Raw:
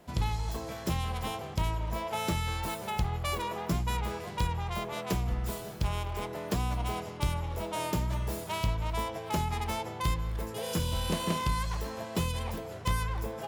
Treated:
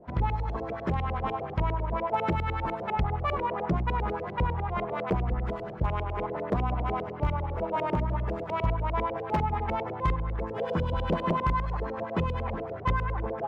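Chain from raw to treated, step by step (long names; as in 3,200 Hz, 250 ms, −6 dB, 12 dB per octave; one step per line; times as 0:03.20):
auto-filter low-pass saw up 10 Hz 400–2,400 Hz
wave folding −19 dBFS
level +2 dB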